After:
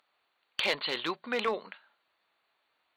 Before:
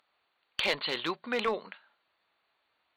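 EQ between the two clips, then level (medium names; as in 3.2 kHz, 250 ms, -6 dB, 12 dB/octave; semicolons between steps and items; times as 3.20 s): bass shelf 100 Hz -9 dB; 0.0 dB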